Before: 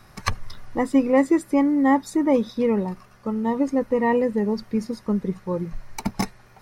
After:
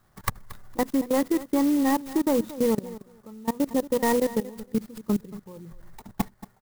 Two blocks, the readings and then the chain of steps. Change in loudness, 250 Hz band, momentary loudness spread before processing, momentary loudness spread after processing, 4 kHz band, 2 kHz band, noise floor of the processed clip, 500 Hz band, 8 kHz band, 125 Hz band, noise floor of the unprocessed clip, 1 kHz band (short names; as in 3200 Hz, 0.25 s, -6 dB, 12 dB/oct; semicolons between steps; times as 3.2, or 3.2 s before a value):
-3.5 dB, -4.0 dB, 13 LU, 19 LU, -1.0 dB, -5.0 dB, -62 dBFS, -4.0 dB, n/a, -5.5 dB, -51 dBFS, -4.5 dB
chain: tracing distortion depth 0.25 ms; level quantiser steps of 21 dB; Butterworth band-stop 2700 Hz, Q 2.4; on a send: feedback echo 0.229 s, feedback 16%, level -16.5 dB; on the sum: clock jitter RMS 0.054 ms